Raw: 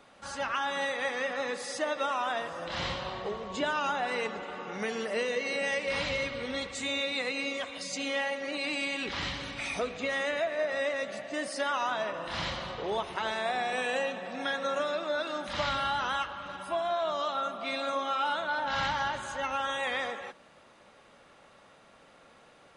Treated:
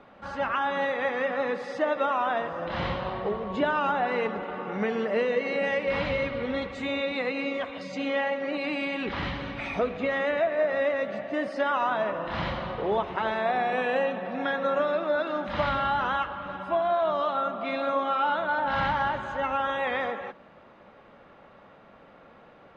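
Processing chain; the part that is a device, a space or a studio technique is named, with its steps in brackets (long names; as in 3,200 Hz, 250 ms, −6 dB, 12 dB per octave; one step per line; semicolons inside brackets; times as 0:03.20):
phone in a pocket (low-pass filter 3,400 Hz 12 dB per octave; parametric band 200 Hz +3 dB 0.27 octaves; high-shelf EQ 2,400 Hz −11 dB)
level +6.5 dB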